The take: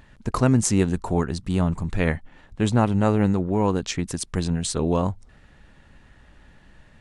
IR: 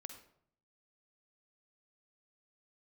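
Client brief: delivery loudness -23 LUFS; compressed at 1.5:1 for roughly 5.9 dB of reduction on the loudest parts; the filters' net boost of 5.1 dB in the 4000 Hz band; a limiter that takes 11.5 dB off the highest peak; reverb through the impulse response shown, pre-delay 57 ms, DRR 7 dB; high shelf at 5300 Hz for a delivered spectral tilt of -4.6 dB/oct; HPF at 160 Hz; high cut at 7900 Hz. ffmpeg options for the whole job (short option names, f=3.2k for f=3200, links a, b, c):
-filter_complex "[0:a]highpass=160,lowpass=7.9k,equalizer=f=4k:t=o:g=3,highshelf=f=5.3k:g=8,acompressor=threshold=-32dB:ratio=1.5,alimiter=limit=-18dB:level=0:latency=1,asplit=2[a][b];[1:a]atrim=start_sample=2205,adelay=57[c];[b][c]afir=irnorm=-1:irlink=0,volume=-2dB[d];[a][d]amix=inputs=2:normalize=0,volume=7dB"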